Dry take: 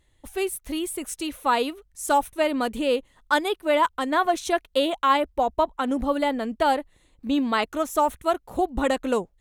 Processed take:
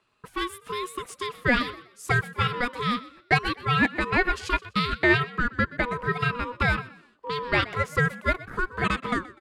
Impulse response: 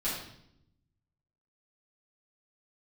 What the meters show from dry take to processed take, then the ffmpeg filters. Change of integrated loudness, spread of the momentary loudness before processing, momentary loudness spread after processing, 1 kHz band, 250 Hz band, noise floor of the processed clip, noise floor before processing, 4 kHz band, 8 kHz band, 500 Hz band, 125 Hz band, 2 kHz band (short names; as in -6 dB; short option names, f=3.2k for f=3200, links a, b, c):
-1.5 dB, 7 LU, 11 LU, -5.0 dB, -3.5 dB, -60 dBFS, -64 dBFS, -0.5 dB, -9.5 dB, -7.0 dB, n/a, +6.5 dB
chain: -filter_complex "[0:a]highpass=130,aeval=exprs='0.376*(cos(1*acos(clip(val(0)/0.376,-1,1)))-cos(1*PI/2))+0.00596*(cos(7*acos(clip(val(0)/0.376,-1,1)))-cos(7*PI/2))':c=same,bass=f=250:g=-10,treble=f=4k:g=-1,acrossover=split=720|1100[a][b][c];[a]acompressor=threshold=-35dB:ratio=6[d];[b]alimiter=level_in=4.5dB:limit=-24dB:level=0:latency=1,volume=-4.5dB[e];[c]aemphasis=mode=reproduction:type=75fm[f];[d][e][f]amix=inputs=3:normalize=0,aeval=exprs='val(0)*sin(2*PI*730*n/s)':c=same,asplit=2[g][h];[h]asplit=3[i][j][k];[i]adelay=124,afreqshift=55,volume=-18.5dB[l];[j]adelay=248,afreqshift=110,volume=-28.4dB[m];[k]adelay=372,afreqshift=165,volume=-38.3dB[n];[l][m][n]amix=inputs=3:normalize=0[o];[g][o]amix=inputs=2:normalize=0,volume=7.5dB"